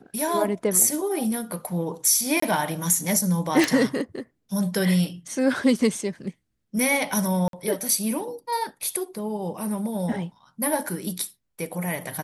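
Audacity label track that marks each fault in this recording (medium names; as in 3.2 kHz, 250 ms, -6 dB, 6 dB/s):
2.400000	2.420000	dropout 24 ms
3.640000	3.640000	pop
7.480000	7.530000	dropout 52 ms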